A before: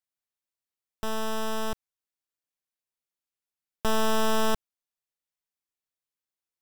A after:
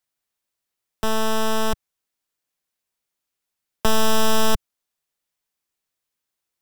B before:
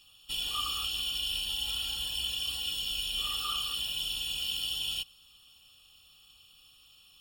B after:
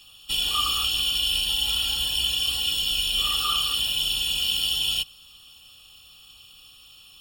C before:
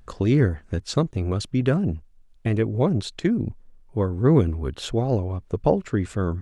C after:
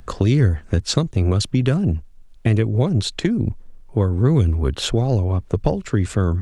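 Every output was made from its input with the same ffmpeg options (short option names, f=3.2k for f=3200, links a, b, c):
-filter_complex "[0:a]acrossover=split=120|3000[a][b][c];[b]acompressor=threshold=-27dB:ratio=6[d];[a][d][c]amix=inputs=3:normalize=0,volume=9dB"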